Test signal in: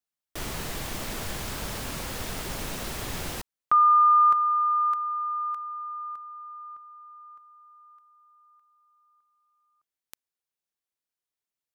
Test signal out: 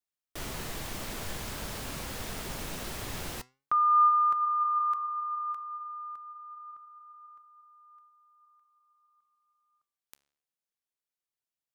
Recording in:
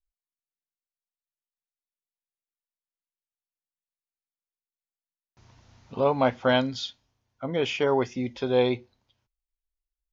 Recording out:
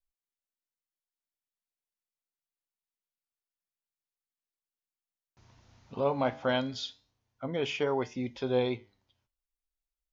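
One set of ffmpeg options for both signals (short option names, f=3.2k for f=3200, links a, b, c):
-filter_complex "[0:a]asplit=2[a][b];[b]alimiter=limit=-19.5dB:level=0:latency=1:release=193,volume=-2dB[c];[a][c]amix=inputs=2:normalize=0,flanger=delay=6.6:depth=7.8:regen=86:speed=0.25:shape=sinusoidal,volume=-4.5dB"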